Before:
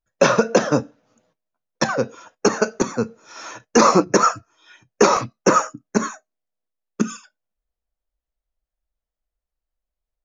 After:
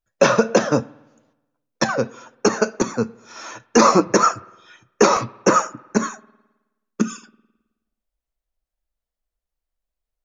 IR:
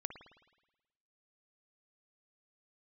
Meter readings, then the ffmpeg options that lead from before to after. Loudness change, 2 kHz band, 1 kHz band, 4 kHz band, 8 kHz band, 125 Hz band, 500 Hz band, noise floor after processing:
0.0 dB, 0.0 dB, 0.0 dB, 0.0 dB, 0.0 dB, 0.0 dB, 0.0 dB, -85 dBFS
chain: -filter_complex "[0:a]asplit=2[a][b];[1:a]atrim=start_sample=2205,adelay=9[c];[b][c]afir=irnorm=-1:irlink=0,volume=-13dB[d];[a][d]amix=inputs=2:normalize=0"

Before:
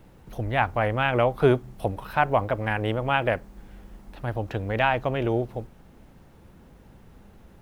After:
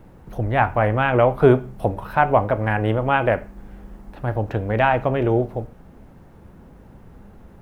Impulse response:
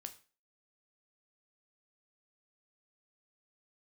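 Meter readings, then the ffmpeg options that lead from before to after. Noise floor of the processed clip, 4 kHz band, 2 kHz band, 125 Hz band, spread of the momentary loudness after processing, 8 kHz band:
-47 dBFS, -2.0 dB, +3.0 dB, +6.0 dB, 12 LU, n/a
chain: -filter_complex "[0:a]asplit=2[a][b];[1:a]atrim=start_sample=2205,lowpass=2.1k[c];[b][c]afir=irnorm=-1:irlink=0,volume=6.5dB[d];[a][d]amix=inputs=2:normalize=0,volume=-1dB"

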